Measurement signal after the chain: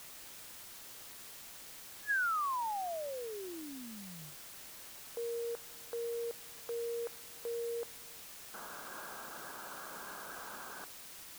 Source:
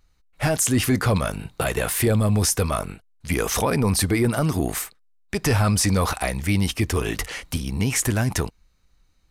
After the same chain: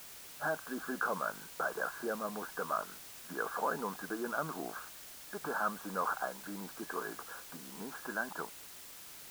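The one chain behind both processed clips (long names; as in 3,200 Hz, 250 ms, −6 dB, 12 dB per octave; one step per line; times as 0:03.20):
brick-wall band-pass 150–1,700 Hz
first difference
in parallel at −9 dB: bit-depth reduction 8 bits, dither triangular
on the sum: level +6.5 dB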